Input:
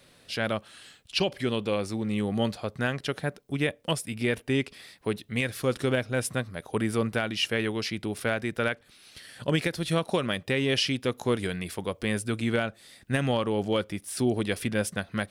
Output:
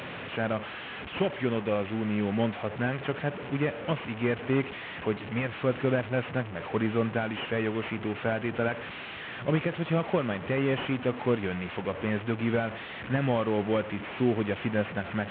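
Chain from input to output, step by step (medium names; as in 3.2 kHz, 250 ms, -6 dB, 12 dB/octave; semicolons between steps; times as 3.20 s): one-bit delta coder 16 kbps, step -31.5 dBFS; high-pass 87 Hz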